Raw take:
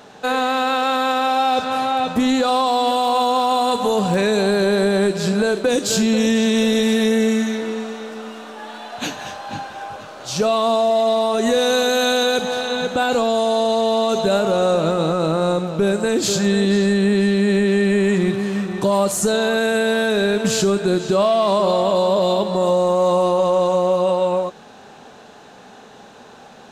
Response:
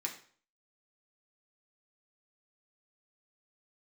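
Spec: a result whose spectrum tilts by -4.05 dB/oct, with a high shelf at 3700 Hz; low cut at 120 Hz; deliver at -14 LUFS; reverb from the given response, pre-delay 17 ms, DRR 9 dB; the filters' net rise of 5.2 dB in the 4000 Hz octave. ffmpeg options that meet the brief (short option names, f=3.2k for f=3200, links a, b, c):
-filter_complex "[0:a]highpass=120,highshelf=f=3.7k:g=-5,equalizer=f=4k:t=o:g=8.5,asplit=2[a][b];[1:a]atrim=start_sample=2205,adelay=17[c];[b][c]afir=irnorm=-1:irlink=0,volume=-10dB[d];[a][d]amix=inputs=2:normalize=0,volume=3.5dB"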